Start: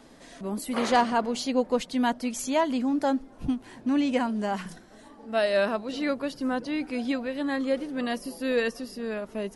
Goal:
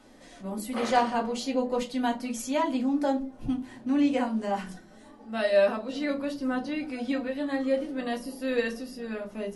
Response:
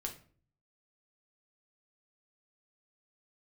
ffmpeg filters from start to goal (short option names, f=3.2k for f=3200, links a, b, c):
-filter_complex "[0:a]lowshelf=f=69:g=-7.5[a];[1:a]atrim=start_sample=2205,asetrate=74970,aresample=44100[b];[a][b]afir=irnorm=-1:irlink=0,volume=3dB"